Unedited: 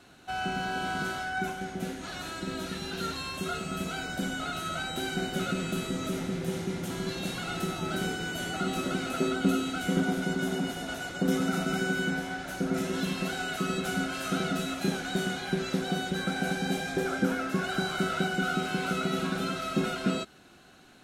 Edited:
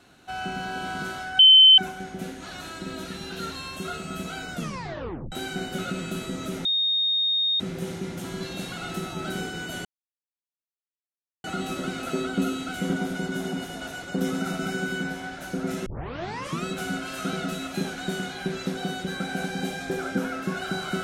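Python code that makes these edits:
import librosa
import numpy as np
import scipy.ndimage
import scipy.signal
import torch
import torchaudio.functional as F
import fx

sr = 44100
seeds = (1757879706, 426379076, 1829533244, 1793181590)

y = fx.edit(x, sr, fx.insert_tone(at_s=1.39, length_s=0.39, hz=3070.0, db=-9.0),
    fx.tape_stop(start_s=4.14, length_s=0.79),
    fx.insert_tone(at_s=6.26, length_s=0.95, hz=3700.0, db=-20.5),
    fx.insert_silence(at_s=8.51, length_s=1.59),
    fx.tape_start(start_s=12.93, length_s=0.78), tone=tone)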